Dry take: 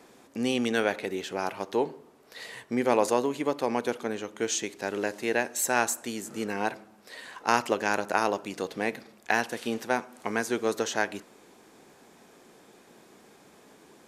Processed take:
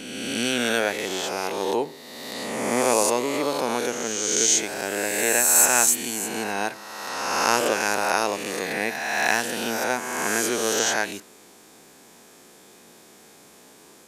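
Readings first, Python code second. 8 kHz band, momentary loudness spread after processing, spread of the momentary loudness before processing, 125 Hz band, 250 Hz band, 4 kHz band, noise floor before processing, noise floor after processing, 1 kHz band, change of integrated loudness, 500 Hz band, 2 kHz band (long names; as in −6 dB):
+14.5 dB, 11 LU, 10 LU, +2.0 dB, +2.0 dB, +10.0 dB, −57 dBFS, −51 dBFS, +4.0 dB, +6.5 dB, +3.5 dB, +6.0 dB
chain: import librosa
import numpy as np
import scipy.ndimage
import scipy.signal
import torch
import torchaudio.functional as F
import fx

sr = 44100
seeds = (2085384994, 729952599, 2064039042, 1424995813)

y = fx.spec_swells(x, sr, rise_s=1.82)
y = fx.high_shelf(y, sr, hz=3600.0, db=10.5)
y = F.gain(torch.from_numpy(y), -1.0).numpy()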